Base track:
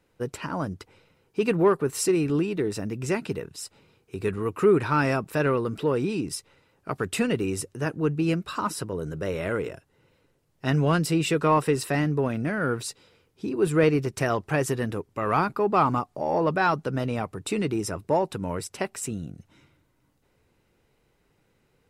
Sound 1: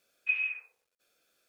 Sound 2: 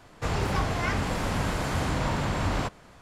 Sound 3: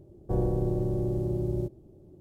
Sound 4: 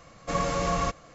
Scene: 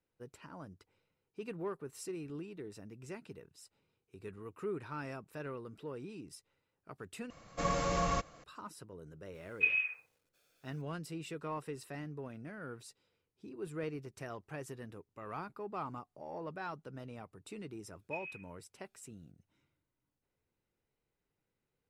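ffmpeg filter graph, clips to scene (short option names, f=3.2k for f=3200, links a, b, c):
-filter_complex "[1:a]asplit=2[a][b];[0:a]volume=-19.5dB,asplit=2[c][d];[c]atrim=end=7.304[e];[4:a]atrim=end=1.14,asetpts=PTS-STARTPTS,volume=-5.5dB[f];[d]atrim=start=8.436[g];[a]atrim=end=1.48,asetpts=PTS-STARTPTS,volume=-0.5dB,afade=t=in:d=0.004:c=hsin,afade=t=out:st=1.476:d=0.004:c=hsin,adelay=9340[h];[b]atrim=end=1.48,asetpts=PTS-STARTPTS,volume=-15.5dB,afade=t=in:d=0.004:c=hsin,afade=t=out:st=1.476:d=0.004:c=hsin,adelay=17840[i];[e][f]acrossfade=d=0.004:c1=hsin:c2=hsin[j];[j][g]acrossfade=d=0.004:c1=hsin:c2=hsin[k];[k][h][i]amix=inputs=3:normalize=0"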